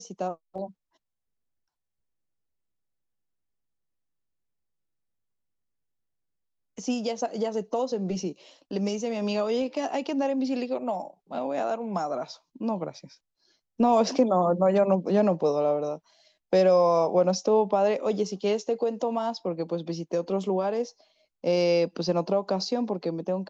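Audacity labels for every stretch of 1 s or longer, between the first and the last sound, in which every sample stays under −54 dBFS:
0.720000	6.770000	silence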